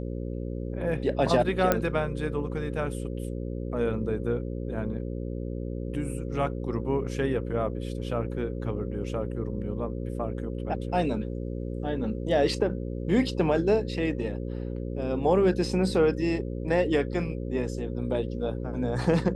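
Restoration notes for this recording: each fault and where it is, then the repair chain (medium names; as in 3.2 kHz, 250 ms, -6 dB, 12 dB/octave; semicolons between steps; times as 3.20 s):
buzz 60 Hz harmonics 9 -33 dBFS
1.72 s: pop -8 dBFS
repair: de-click; de-hum 60 Hz, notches 9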